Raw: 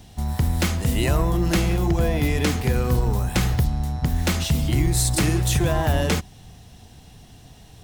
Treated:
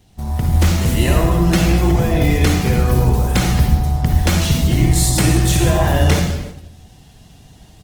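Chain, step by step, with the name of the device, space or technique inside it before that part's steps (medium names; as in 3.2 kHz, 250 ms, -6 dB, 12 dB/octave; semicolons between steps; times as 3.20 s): speakerphone in a meeting room (reverberation RT60 1.0 s, pre-delay 44 ms, DRR 2 dB; speakerphone echo 290 ms, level -26 dB; level rider gain up to 5.5 dB; gate -29 dBFS, range -6 dB; Opus 16 kbps 48 kHz)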